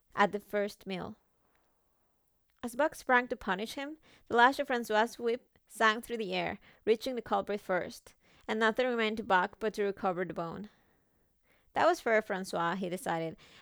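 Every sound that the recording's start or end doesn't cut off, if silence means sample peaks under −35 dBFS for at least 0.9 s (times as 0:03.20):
0:02.63–0:10.64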